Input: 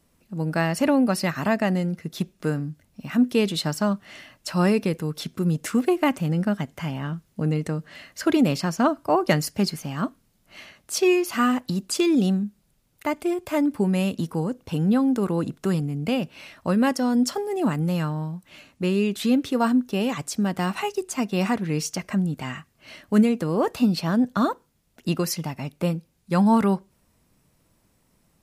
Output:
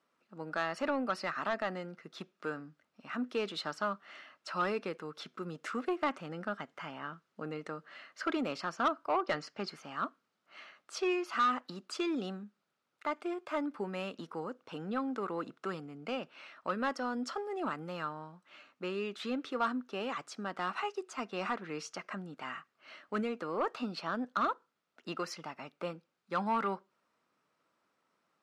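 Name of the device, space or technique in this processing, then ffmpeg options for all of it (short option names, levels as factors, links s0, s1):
intercom: -filter_complex "[0:a]asettb=1/sr,asplit=3[s0][s1][s2];[s0]atrim=end=9.214[s3];[s1]atrim=start=9.21:end=9.69,asetpts=PTS-STARTPTS,afade=t=in:d=0.004:c=qsin,afade=t=out:st=0.476:d=0.004:c=qsin,lowpass=5700[s4];[s2]atrim=start=9.686[s5];[s3][s4]acrossfade=d=0.004:c1=hsin:c2=qsin[s6];[s6][s5]acrossfade=d=0.004:c1=qsin:c2=hsin,highpass=370,lowpass=4400,equalizer=f=1300:t=o:w=0.48:g=10.5,asoftclip=type=tanh:threshold=0.211,volume=0.355"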